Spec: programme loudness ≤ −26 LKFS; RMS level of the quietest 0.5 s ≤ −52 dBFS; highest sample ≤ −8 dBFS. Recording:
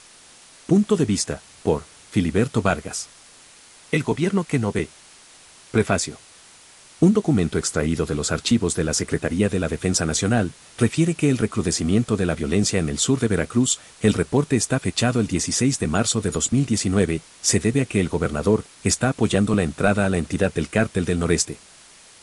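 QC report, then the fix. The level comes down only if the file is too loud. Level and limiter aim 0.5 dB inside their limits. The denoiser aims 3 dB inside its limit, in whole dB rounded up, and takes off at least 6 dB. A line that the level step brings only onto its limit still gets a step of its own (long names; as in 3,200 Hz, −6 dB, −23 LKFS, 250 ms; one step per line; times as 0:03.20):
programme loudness −21.5 LKFS: out of spec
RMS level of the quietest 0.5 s −48 dBFS: out of spec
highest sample −4.5 dBFS: out of spec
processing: level −5 dB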